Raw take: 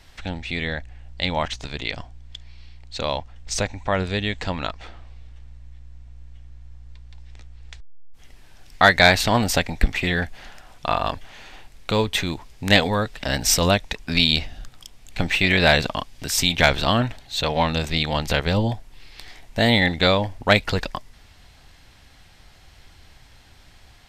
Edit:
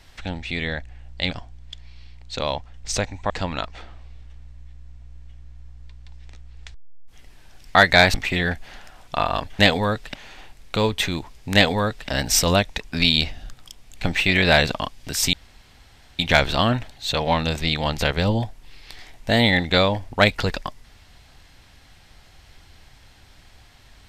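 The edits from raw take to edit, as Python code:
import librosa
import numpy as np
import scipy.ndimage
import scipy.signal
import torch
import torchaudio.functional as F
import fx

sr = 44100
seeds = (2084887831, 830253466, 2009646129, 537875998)

y = fx.edit(x, sr, fx.cut(start_s=1.31, length_s=0.62),
    fx.cut(start_s=3.92, length_s=0.44),
    fx.cut(start_s=9.2, length_s=0.65),
    fx.duplicate(start_s=12.69, length_s=0.56, to_s=11.3),
    fx.insert_room_tone(at_s=16.48, length_s=0.86), tone=tone)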